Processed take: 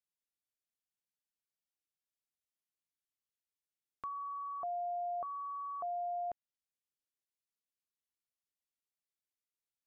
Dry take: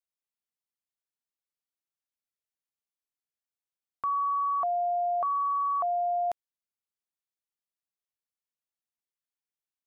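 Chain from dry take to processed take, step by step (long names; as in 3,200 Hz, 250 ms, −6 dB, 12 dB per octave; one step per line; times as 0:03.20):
treble cut that deepens with the level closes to 1,200 Hz, closed at −26 dBFS
parametric band 980 Hz −8.5 dB 1.4 octaves
level −3.5 dB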